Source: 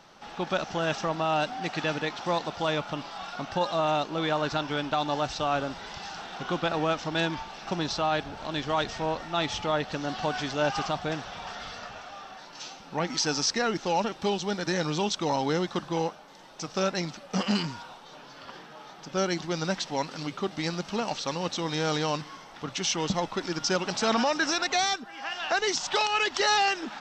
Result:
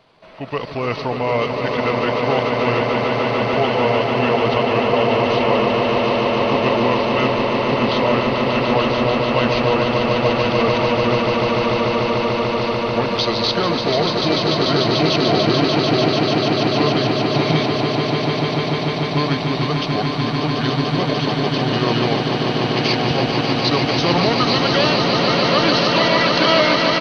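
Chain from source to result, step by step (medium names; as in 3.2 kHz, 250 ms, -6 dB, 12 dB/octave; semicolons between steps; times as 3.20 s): level rider gain up to 7 dB; pitch shift -4.5 st; on a send: echo with a slow build-up 147 ms, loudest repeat 8, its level -6 dB; on the sum: trim -1 dB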